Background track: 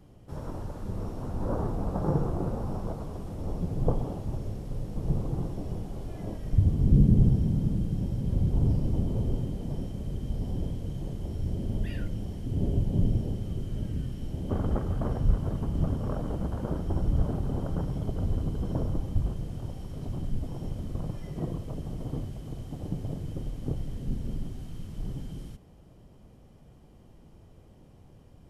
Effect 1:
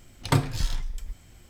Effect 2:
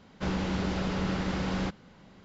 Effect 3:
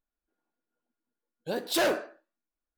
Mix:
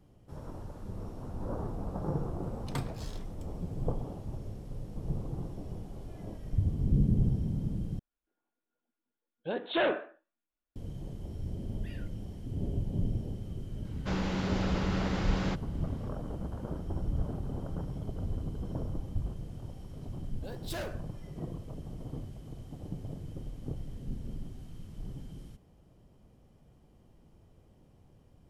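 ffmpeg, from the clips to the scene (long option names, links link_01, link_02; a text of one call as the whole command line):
ffmpeg -i bed.wav -i cue0.wav -i cue1.wav -i cue2.wav -filter_complex "[3:a]asplit=2[link_01][link_02];[0:a]volume=-6.5dB[link_03];[link_01]aresample=8000,aresample=44100[link_04];[link_03]asplit=2[link_05][link_06];[link_05]atrim=end=7.994[link_07];[link_04]atrim=end=2.77,asetpts=PTS-STARTPTS,volume=-2dB[link_08];[link_06]atrim=start=10.756[link_09];[1:a]atrim=end=1.49,asetpts=PTS-STARTPTS,volume=-14dB,afade=type=in:duration=0.004:curve=hsin,afade=type=out:start_time=1.486:duration=0.004:curve=hsin,adelay=2430[link_10];[2:a]atrim=end=2.24,asetpts=PTS-STARTPTS,volume=-2dB,afade=type=in:duration=0.004:curve=hsin,afade=type=out:start_time=2.236:duration=0.004:curve=hsin,adelay=13850[link_11];[link_02]atrim=end=2.77,asetpts=PTS-STARTPTS,volume=-13.5dB,afade=type=in:duration=0.004:curve=hsin,afade=type=out:start_time=2.766:duration=0.004:curve=hsin,adelay=18960[link_12];[link_07][link_08]acrossfade=duration=0.004:curve1=hsin:curve2=hsin[link_13];[link_13][link_09]acrossfade=duration=0.004:curve1=hsin:curve2=hsin[link_14];[link_14][link_10][link_11][link_12]amix=inputs=4:normalize=0" out.wav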